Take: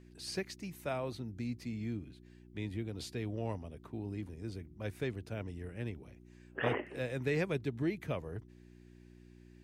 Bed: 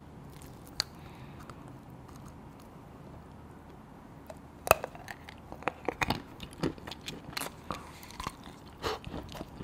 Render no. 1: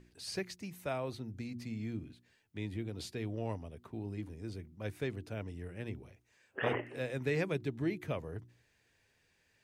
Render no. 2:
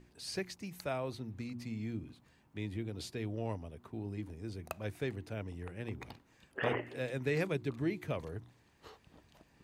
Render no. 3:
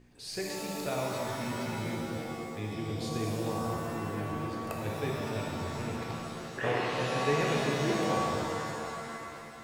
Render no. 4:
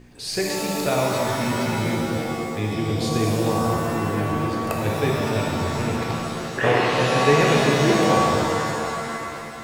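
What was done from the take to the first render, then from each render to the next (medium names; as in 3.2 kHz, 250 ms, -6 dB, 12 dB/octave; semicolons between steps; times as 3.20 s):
de-hum 60 Hz, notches 6
add bed -20.5 dB
pitch-shifted reverb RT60 2.6 s, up +7 st, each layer -2 dB, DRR -2 dB
trim +11.5 dB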